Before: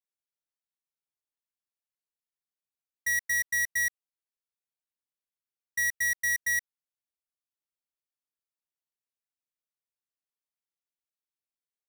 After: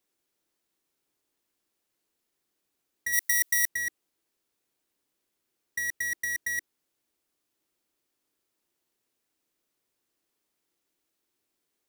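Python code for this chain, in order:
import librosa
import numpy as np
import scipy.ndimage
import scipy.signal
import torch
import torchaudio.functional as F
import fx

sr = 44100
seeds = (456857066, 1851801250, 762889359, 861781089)

y = fx.peak_eq(x, sr, hz=330.0, db=11.5, octaves=0.99)
y = fx.over_compress(y, sr, threshold_db=-35.0, ratio=-1.0)
y = fx.tilt_eq(y, sr, slope=3.5, at=(3.12, 3.67), fade=0.02)
y = F.gain(torch.from_numpy(y), 5.0).numpy()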